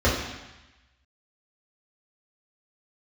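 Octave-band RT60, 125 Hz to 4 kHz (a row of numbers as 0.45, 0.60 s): 1.1, 1.0, 0.95, 1.1, 1.2, 1.2 s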